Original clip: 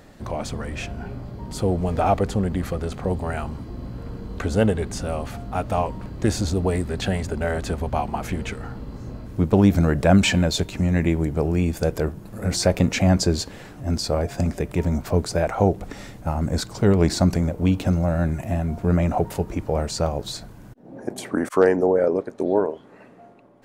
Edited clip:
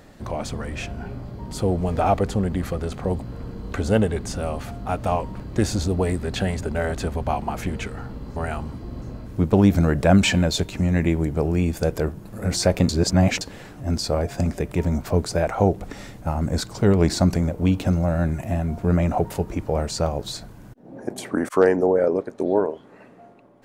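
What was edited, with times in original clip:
0:03.22–0:03.88: move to 0:09.02
0:12.89–0:13.41: reverse

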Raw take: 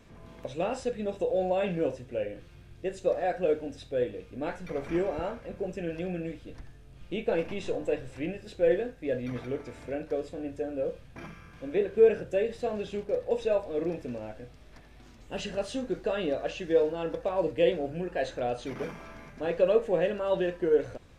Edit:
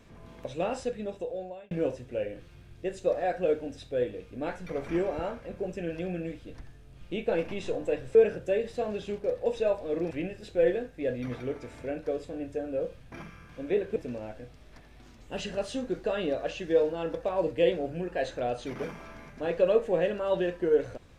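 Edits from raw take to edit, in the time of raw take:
0:00.79–0:01.71: fade out
0:12.00–0:13.96: move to 0:08.15

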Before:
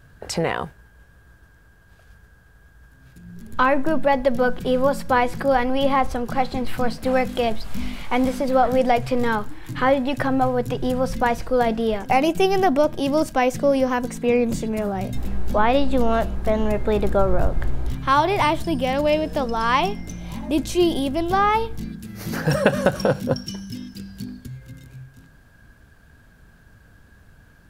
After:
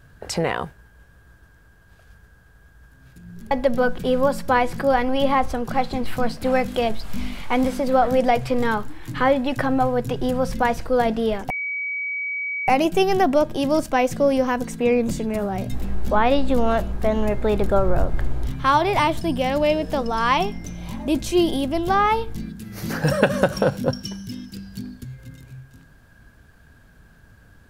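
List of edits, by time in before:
0:03.51–0:04.12: remove
0:12.11: insert tone 2,270 Hz −24 dBFS 1.18 s

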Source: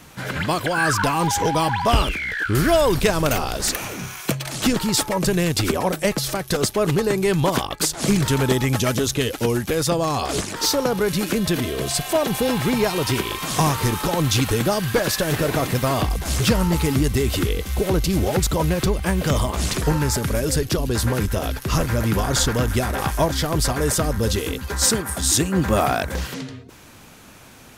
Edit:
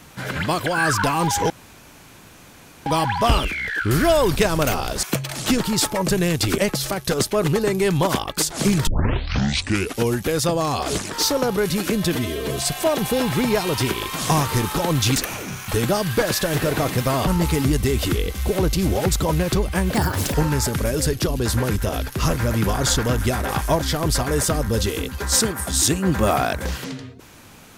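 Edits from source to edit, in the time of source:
0:01.50: splice in room tone 1.36 s
0:03.67–0:04.19: move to 0:14.45
0:05.74–0:06.01: remove
0:08.30: tape start 1.15 s
0:11.58–0:11.86: time-stretch 1.5×
0:16.04–0:16.58: remove
0:19.25–0:19.84: play speed 146%

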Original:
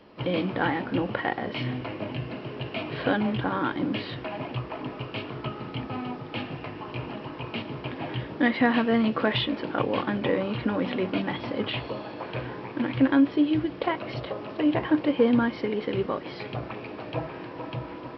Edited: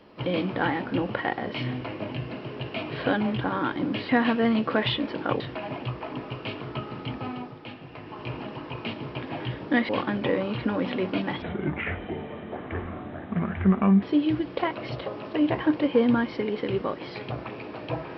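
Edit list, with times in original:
0:05.92–0:06.99: duck −8 dB, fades 0.45 s
0:08.58–0:09.89: move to 0:04.09
0:11.42–0:13.27: play speed 71%

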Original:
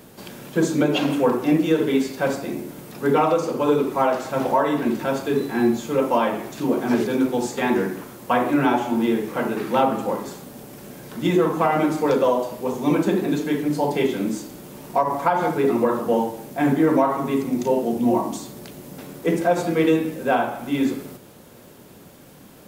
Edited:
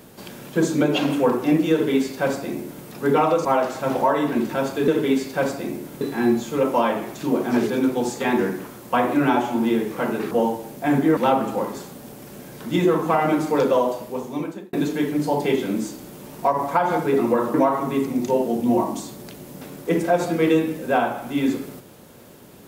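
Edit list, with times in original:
0:01.72–0:02.85: duplicate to 0:05.38
0:03.45–0:03.95: remove
0:12.41–0:13.24: fade out
0:16.05–0:16.91: move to 0:09.68

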